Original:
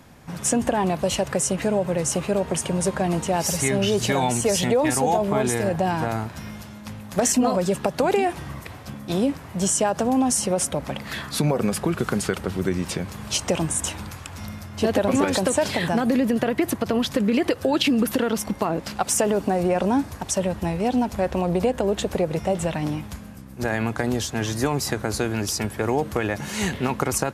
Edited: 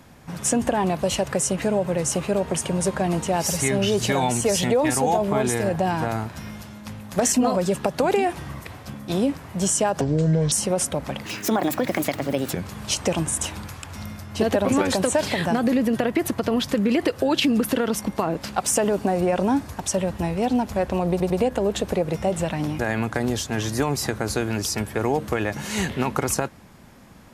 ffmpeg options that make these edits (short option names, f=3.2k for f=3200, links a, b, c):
-filter_complex "[0:a]asplit=8[a][b][c][d][e][f][g][h];[a]atrim=end=10.014[i];[b]atrim=start=10.01:end=10.32,asetpts=PTS-STARTPTS,asetrate=26901,aresample=44100,atrim=end_sample=22411,asetpts=PTS-STARTPTS[j];[c]atrim=start=10.316:end=11.064[k];[d]atrim=start=11.06:end=12.96,asetpts=PTS-STARTPTS,asetrate=65709,aresample=44100[l];[e]atrim=start=12.956:end=21.632[m];[f]atrim=start=21.528:end=21.632[n];[g]atrim=start=21.528:end=23.022[o];[h]atrim=start=23.628[p];[i][j]acrossfade=d=0.004:c1=hsin:c2=hsin[q];[q][k]acrossfade=d=0.004:c1=hsin:c2=hsin[r];[r][l]acrossfade=d=0.004:c1=hsin:c2=hsin[s];[s][m]acrossfade=d=0.004:c1=hsin:c2=hsin[t];[t][n]acrossfade=d=0.004:c1=hsin:c2=hsin[u];[u][o]acrossfade=d=0.004:c1=hsin:c2=hsin[v];[v][p]acrossfade=d=0.004:c1=hsin:c2=hsin"